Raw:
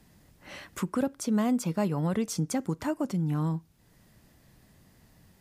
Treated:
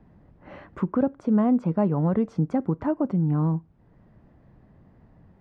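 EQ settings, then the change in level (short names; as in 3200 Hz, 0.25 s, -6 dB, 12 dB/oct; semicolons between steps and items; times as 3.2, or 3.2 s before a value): LPF 1100 Hz 12 dB/oct; +5.5 dB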